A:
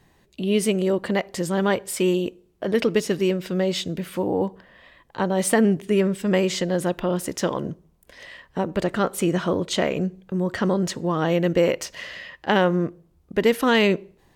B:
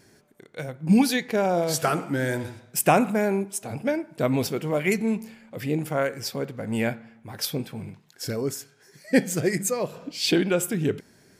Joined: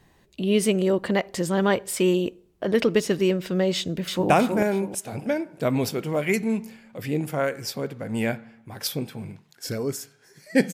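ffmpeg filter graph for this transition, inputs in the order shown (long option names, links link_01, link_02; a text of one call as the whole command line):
ffmpeg -i cue0.wav -i cue1.wav -filter_complex "[0:a]apad=whole_dur=10.73,atrim=end=10.73,atrim=end=4.302[link_01];[1:a]atrim=start=2.878:end=9.31[link_02];[link_01][link_02]acrossfade=duration=0.004:curve1=hsin:curve2=hsin,asplit=2[link_03][link_04];[link_04]afade=type=in:start_time=3.75:duration=0.01,afade=type=out:start_time=4.3:duration=0.01,aecho=0:1:320|640|960|1280|1600:0.668344|0.23392|0.0818721|0.0286552|0.0100293[link_05];[link_03][link_05]amix=inputs=2:normalize=0" out.wav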